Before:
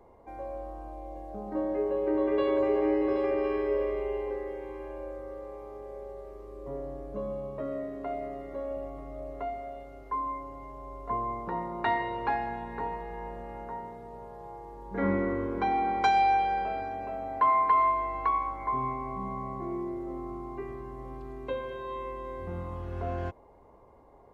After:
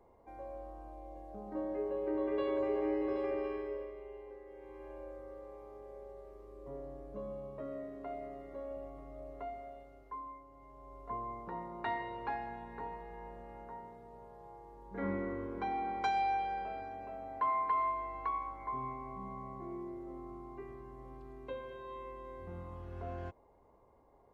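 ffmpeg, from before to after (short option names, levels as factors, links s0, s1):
-af "volume=2.51,afade=t=out:st=3.35:d=0.58:silence=0.354813,afade=t=in:st=4.46:d=0.45:silence=0.375837,afade=t=out:st=9.62:d=0.85:silence=0.398107,afade=t=in:st=10.47:d=0.52:silence=0.446684"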